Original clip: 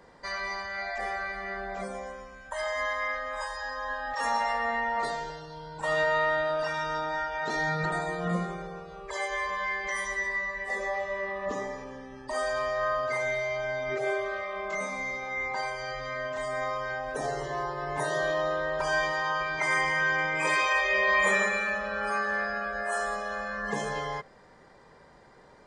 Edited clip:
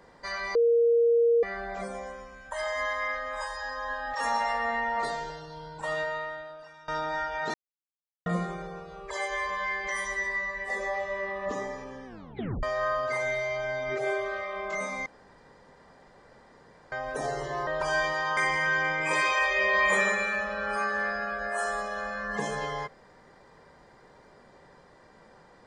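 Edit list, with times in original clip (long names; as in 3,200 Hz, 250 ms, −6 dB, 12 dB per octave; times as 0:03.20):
0:00.55–0:01.43: beep over 468 Hz −18.5 dBFS
0:05.66–0:06.88: fade out quadratic, to −20.5 dB
0:07.54–0:08.26: silence
0:12.06: tape stop 0.57 s
0:15.06–0:16.92: fill with room tone
0:17.67–0:18.66: remove
0:19.36–0:19.71: remove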